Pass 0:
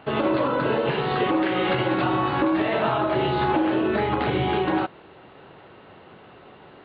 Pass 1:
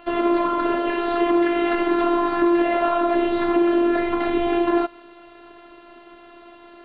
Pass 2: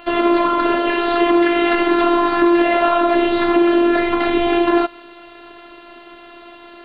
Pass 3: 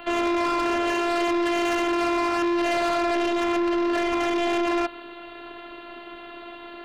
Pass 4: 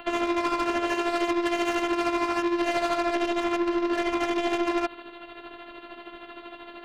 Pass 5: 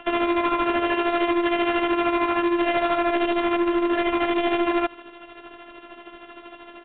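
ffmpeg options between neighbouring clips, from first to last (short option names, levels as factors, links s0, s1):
-filter_complex "[0:a]afftfilt=real='hypot(re,im)*cos(PI*b)':imag='0':win_size=512:overlap=0.75,acrossover=split=2600[s0][s1];[s1]acompressor=threshold=0.00447:ratio=4:attack=1:release=60[s2];[s0][s2]amix=inputs=2:normalize=0,volume=1.88"
-af "highshelf=f=2200:g=8,volume=1.58"
-filter_complex "[0:a]acrossover=split=260|410|2000[s0][s1][s2][s3];[s0]alimiter=level_in=1.68:limit=0.0631:level=0:latency=1,volume=0.596[s4];[s4][s1][s2][s3]amix=inputs=4:normalize=0,asoftclip=type=tanh:threshold=0.0841"
-af "tremolo=f=13:d=0.57"
-filter_complex "[0:a]asplit=2[s0][s1];[s1]acrusher=bits=4:mix=0:aa=0.5,volume=0.562[s2];[s0][s2]amix=inputs=2:normalize=0,aresample=8000,aresample=44100"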